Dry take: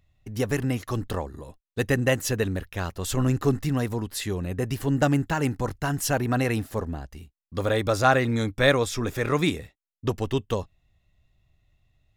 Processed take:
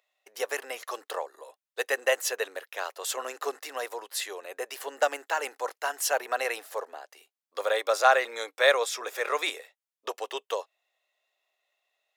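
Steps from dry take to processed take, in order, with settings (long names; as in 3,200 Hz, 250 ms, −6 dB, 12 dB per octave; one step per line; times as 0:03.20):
Butterworth high-pass 480 Hz 36 dB per octave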